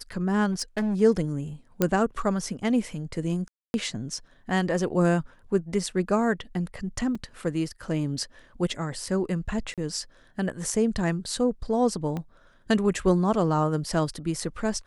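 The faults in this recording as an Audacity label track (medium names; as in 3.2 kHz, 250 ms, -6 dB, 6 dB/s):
0.510000	1.010000	clipped -23 dBFS
1.820000	1.820000	pop -8 dBFS
3.480000	3.740000	dropout 261 ms
7.150000	7.150000	dropout 3.8 ms
9.740000	9.780000	dropout 37 ms
12.170000	12.170000	pop -20 dBFS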